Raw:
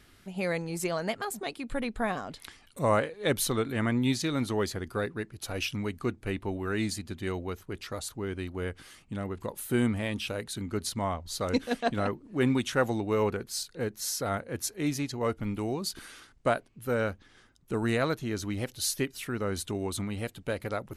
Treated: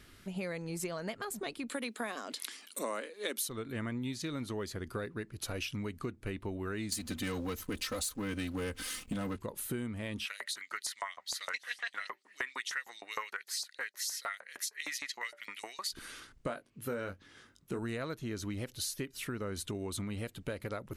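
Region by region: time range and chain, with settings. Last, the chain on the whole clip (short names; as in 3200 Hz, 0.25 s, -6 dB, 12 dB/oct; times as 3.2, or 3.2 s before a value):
1.69–3.49 steep high-pass 220 Hz 48 dB/oct + high shelf 2900 Hz +11.5 dB
6.92–9.37 comb 3.9 ms, depth 90% + sample leveller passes 2 + high shelf 4100 Hz +8.5 dB
10.25–15.92 bell 1900 Hz +13 dB 0.26 oct + de-hum 193.5 Hz, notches 4 + LFO high-pass saw up 6.5 Hz 800–6200 Hz
16.47–17.79 HPF 110 Hz 6 dB/oct + doubler 21 ms -7 dB
whole clip: bell 780 Hz -5.5 dB 0.32 oct; compressor, threshold -36 dBFS; gain +1 dB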